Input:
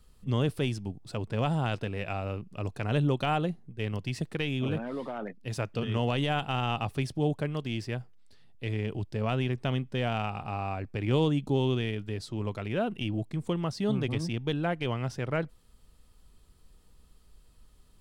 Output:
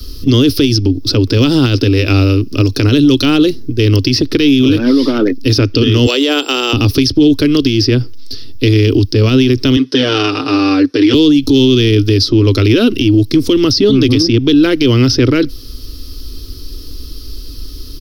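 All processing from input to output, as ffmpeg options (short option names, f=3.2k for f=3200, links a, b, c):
-filter_complex "[0:a]asettb=1/sr,asplit=3[a][b][c];[a]atrim=end=6.064[d];[b]atrim=start=6.06:end=6.73,asetpts=PTS-STARTPTS,afade=t=in:d=0.004:c=qsin,afade=t=out:st=0.666:d=0.004:c=qsin,highpass=f=430:w=0.5412,highpass=f=430:w=1.3066,aeval=exprs='val(0)+0.00355*sin(2*PI*7400*n/s)':c=same[e];[c]atrim=start=6.726[f];[d][e]acrossfade=d=0.004:c1=hsin:c2=qsin[g];[g][f]acrossfade=d=0.004:c1=qsin:c2=hsin,asettb=1/sr,asplit=3[h][i][j];[h]atrim=end=9.764[k];[i]atrim=start=9.76:end=11.14,asetpts=PTS-STARTPTS,afade=t=in:d=0.004:c=qsin,afade=t=out:st=1.376:d=0.004:c=qsin,highpass=360,equalizer=f=670:t=q:w=4:g=-3,equalizer=f=1.7k:t=q:w=4:g=3,equalizer=f=2.4k:t=q:w=4:g=-7,equalizer=f=5k:t=q:w=4:g=-3,equalizer=f=7.1k:t=q:w=4:g=-9,lowpass=f=8.8k:w=0.5412,lowpass=f=8.8k:w=1.3066,aecho=1:1:6.7:0.88,atrim=end_sample=60858[l];[j]atrim=start=11.136[m];[k][l]acrossfade=d=0.004:c1=hsin:c2=qsin[n];[n][m]acrossfade=d=0.004:c1=qsin:c2=hsin,firequalizer=gain_entry='entry(100,0);entry(180,-23);entry(270,7);entry(720,-23);entry(1300,-10);entry(1800,-13);entry(5300,12);entry(7500,-17);entry(12000,3)':delay=0.05:min_phase=1,acrossover=split=94|540|1700|4600[o][p][q][r][s];[o]acompressor=threshold=-53dB:ratio=4[t];[p]acompressor=threshold=-40dB:ratio=4[u];[q]acompressor=threshold=-54dB:ratio=4[v];[r]acompressor=threshold=-48dB:ratio=4[w];[s]acompressor=threshold=-57dB:ratio=4[x];[t][u][v][w][x]amix=inputs=5:normalize=0,alimiter=level_in=34dB:limit=-1dB:release=50:level=0:latency=1,volume=-1dB"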